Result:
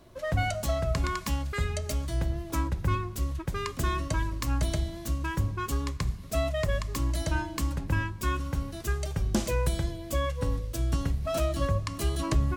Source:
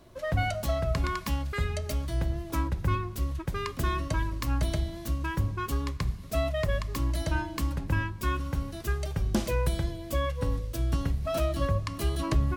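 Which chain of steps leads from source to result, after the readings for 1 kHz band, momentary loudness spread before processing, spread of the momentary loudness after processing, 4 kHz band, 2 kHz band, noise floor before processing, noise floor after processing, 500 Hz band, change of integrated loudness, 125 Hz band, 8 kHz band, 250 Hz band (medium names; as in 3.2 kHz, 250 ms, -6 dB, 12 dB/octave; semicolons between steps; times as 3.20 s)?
0.0 dB, 4 LU, 4 LU, +1.0 dB, 0.0 dB, -41 dBFS, -41 dBFS, 0.0 dB, 0.0 dB, 0.0 dB, +4.0 dB, 0.0 dB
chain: dynamic bell 7.3 kHz, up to +6 dB, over -57 dBFS, Q 1.6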